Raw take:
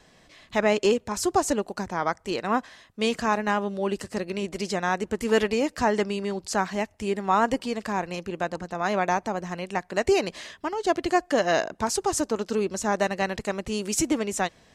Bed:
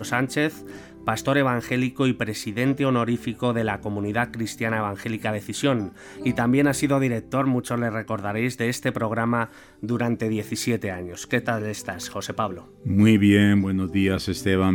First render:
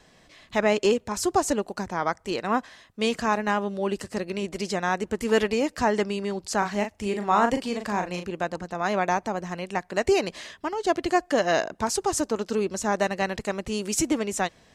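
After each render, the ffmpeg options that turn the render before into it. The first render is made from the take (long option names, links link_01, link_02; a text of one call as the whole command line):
ffmpeg -i in.wav -filter_complex "[0:a]asettb=1/sr,asplit=3[link_01][link_02][link_03];[link_01]atrim=end=6.584[link_04];[link_02]atrim=start=6.58:end=8.28,asetpts=PTS-STARTPTS,afade=type=in:duration=0.004:curve=qsin,afade=type=out:start_time=1.696:duration=0.004:curve=qsin,asplit=2[link_05][link_06];[link_06]adelay=39,volume=-6.5dB[link_07];[link_05][link_07]amix=inputs=2:normalize=0,atrim=end_sample=74970[link_08];[link_03]atrim=start=8.276[link_09];[link_04][link_08]acrossfade=duration=0.004:curve1=hsin:curve2=qsin[link_10];[link_10][link_09]acrossfade=duration=0.004:curve1=qsin:curve2=hsin" out.wav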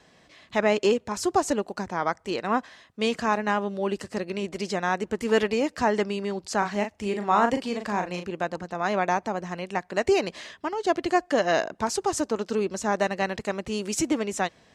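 ffmpeg -i in.wav -af "highpass=frequency=88:poles=1,highshelf=frequency=10000:gain=-10.5" out.wav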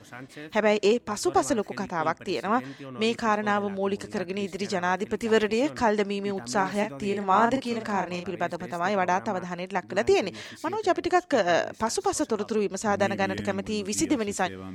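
ffmpeg -i in.wav -i bed.wav -filter_complex "[1:a]volume=-19dB[link_01];[0:a][link_01]amix=inputs=2:normalize=0" out.wav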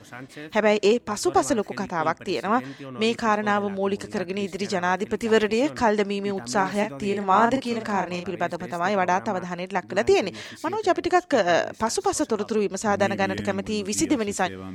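ffmpeg -i in.wav -af "volume=2.5dB" out.wav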